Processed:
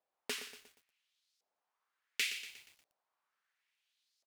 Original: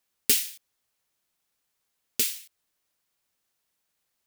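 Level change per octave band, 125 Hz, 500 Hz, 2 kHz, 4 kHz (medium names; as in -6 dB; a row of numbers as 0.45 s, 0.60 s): under -15 dB, -8.0 dB, -0.5 dB, -8.0 dB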